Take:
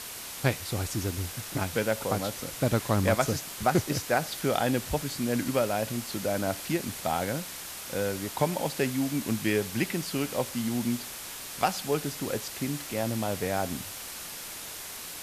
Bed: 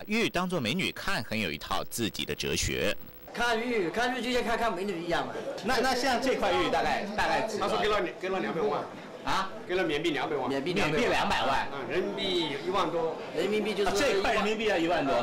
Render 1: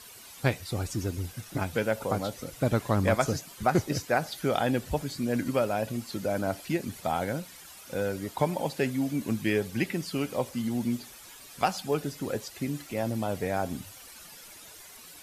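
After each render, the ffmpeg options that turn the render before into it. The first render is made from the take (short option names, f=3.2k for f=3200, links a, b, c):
-af "afftdn=nr=12:nf=-40"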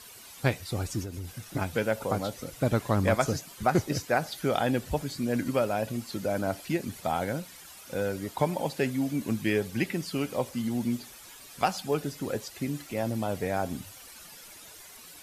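-filter_complex "[0:a]asettb=1/sr,asplit=3[a][b][c];[a]atrim=end=1.024[d];[b]atrim=start=1.02:end=1.46,asetpts=PTS-STARTPTS,afade=t=in:d=0.004:c=qsin,afade=t=out:st=0.436:d=0.004:c=qsin,acompressor=threshold=-33dB:ratio=6:attack=3.2:release=140:knee=1:detection=peak[e];[c]atrim=start=1.456[f];[d][e]acrossfade=d=0.004:c1=hsin:c2=qsin[g];[g][f]acrossfade=d=0.004:c1=qsin:c2=hsin"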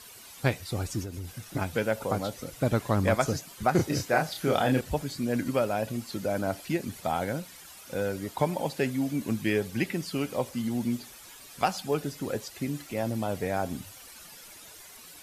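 -filter_complex "[0:a]asettb=1/sr,asplit=3[a][b][c];[a]atrim=end=3.764[d];[b]atrim=start=3.76:end=4.81,asetpts=PTS-STARTPTS,afade=t=in:d=0.004:c=qsin,afade=t=out:st=1.046:d=0.004:c=qsin,asplit=2[e][f];[f]adelay=31,volume=-3.5dB[g];[e][g]amix=inputs=2:normalize=0,atrim=end_sample=46305[h];[c]atrim=start=4.806[i];[d][h]acrossfade=d=0.004:c1=hsin:c2=qsin[j];[j][i]acrossfade=d=0.004:c1=qsin:c2=hsin"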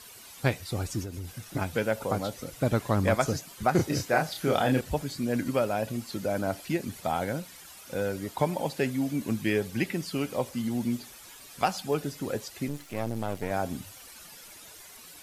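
-filter_complex "[0:a]asettb=1/sr,asplit=3[a][b][c];[a]atrim=end=12.684[d];[b]atrim=start=12.68:end=13.51,asetpts=PTS-STARTPTS,afade=t=in:d=0.004:c=qsin,afade=t=out:st=0.826:d=0.004:c=qsin,aeval=exprs='if(lt(val(0),0),0.251*val(0),val(0))':c=same[e];[c]atrim=start=13.506[f];[d][e]acrossfade=d=0.004:c1=hsin:c2=qsin[g];[g][f]acrossfade=d=0.004:c1=qsin:c2=hsin"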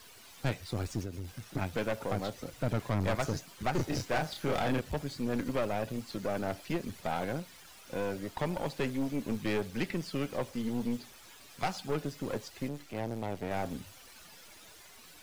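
-filter_complex "[0:a]acrossover=split=140|790|6100[a][b][c][d];[d]aeval=exprs='max(val(0),0)':c=same[e];[a][b][c][e]amix=inputs=4:normalize=0,aeval=exprs='(tanh(20*val(0)+0.65)-tanh(0.65))/20':c=same"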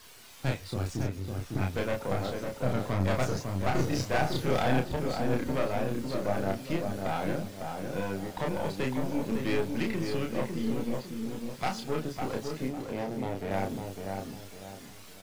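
-filter_complex "[0:a]asplit=2[a][b];[b]adelay=31,volume=-3dB[c];[a][c]amix=inputs=2:normalize=0,asplit=2[d][e];[e]adelay=553,lowpass=f=1.4k:p=1,volume=-4dB,asplit=2[f][g];[g]adelay=553,lowpass=f=1.4k:p=1,volume=0.38,asplit=2[h][i];[i]adelay=553,lowpass=f=1.4k:p=1,volume=0.38,asplit=2[j][k];[k]adelay=553,lowpass=f=1.4k:p=1,volume=0.38,asplit=2[l][m];[m]adelay=553,lowpass=f=1.4k:p=1,volume=0.38[n];[d][f][h][j][l][n]amix=inputs=6:normalize=0"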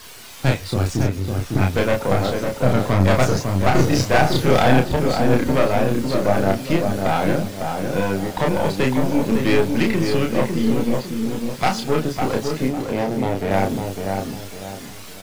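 -af "volume=12dB,alimiter=limit=-3dB:level=0:latency=1"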